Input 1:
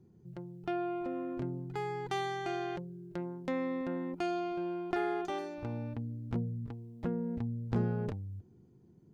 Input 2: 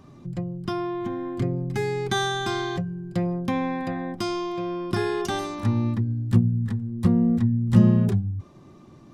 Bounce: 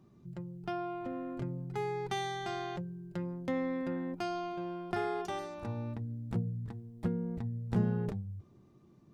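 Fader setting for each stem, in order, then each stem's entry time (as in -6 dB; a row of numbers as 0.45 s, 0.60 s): -1.5 dB, -17.5 dB; 0.00 s, 0.00 s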